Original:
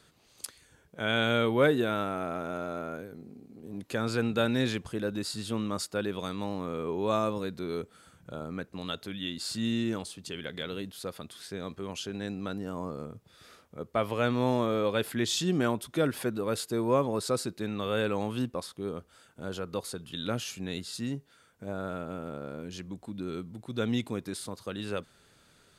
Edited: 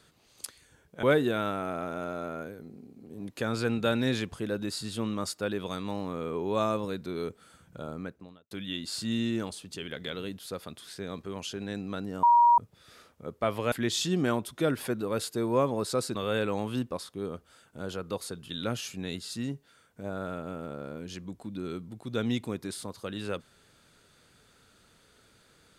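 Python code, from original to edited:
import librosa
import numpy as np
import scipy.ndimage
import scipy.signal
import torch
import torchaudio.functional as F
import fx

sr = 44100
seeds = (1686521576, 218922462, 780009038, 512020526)

y = fx.studio_fade_out(x, sr, start_s=8.43, length_s=0.61)
y = fx.edit(y, sr, fx.cut(start_s=1.03, length_s=0.53),
    fx.bleep(start_s=12.76, length_s=0.35, hz=951.0, db=-16.0),
    fx.cut(start_s=14.25, length_s=0.83),
    fx.cut(start_s=17.51, length_s=0.27), tone=tone)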